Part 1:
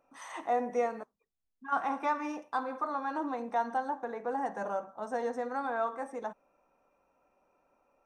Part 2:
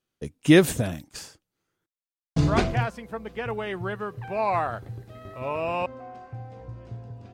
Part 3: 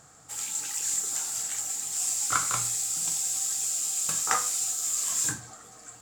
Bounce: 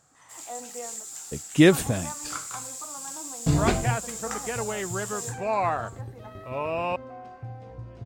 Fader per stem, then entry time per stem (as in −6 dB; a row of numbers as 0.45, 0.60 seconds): −9.5, −0.5, −9.0 decibels; 0.00, 1.10, 0.00 seconds